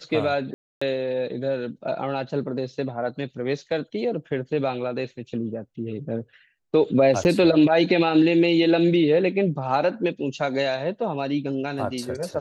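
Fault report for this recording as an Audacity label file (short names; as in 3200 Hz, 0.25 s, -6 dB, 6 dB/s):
0.540000	0.810000	gap 0.275 s
7.240000	7.250000	gap 9.6 ms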